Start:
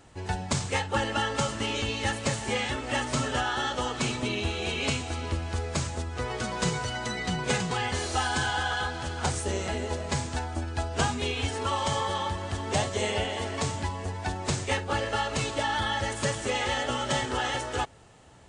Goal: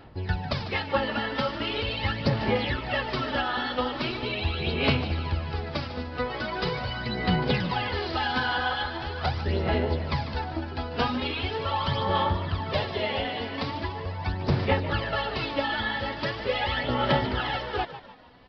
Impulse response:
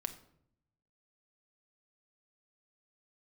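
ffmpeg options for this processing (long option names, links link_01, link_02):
-filter_complex "[0:a]aphaser=in_gain=1:out_gain=1:delay=4.1:decay=0.58:speed=0.41:type=sinusoidal,aresample=11025,aresample=44100,asplit=5[link_01][link_02][link_03][link_04][link_05];[link_02]adelay=148,afreqshift=68,volume=-13dB[link_06];[link_03]adelay=296,afreqshift=136,volume=-20.7dB[link_07];[link_04]adelay=444,afreqshift=204,volume=-28.5dB[link_08];[link_05]adelay=592,afreqshift=272,volume=-36.2dB[link_09];[link_01][link_06][link_07][link_08][link_09]amix=inputs=5:normalize=0,volume=-1dB"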